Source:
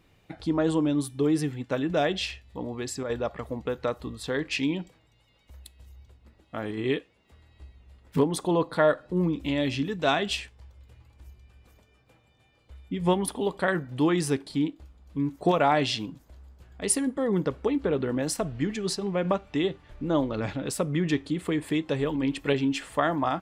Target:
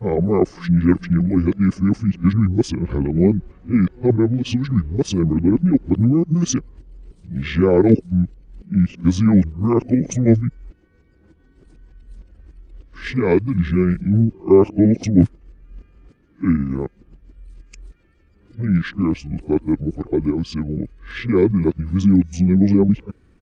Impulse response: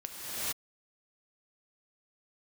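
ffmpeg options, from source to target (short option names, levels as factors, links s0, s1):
-af "areverse,asetrate=27781,aresample=44100,atempo=1.5874,lowshelf=f=510:t=q:w=1.5:g=8,volume=1.19"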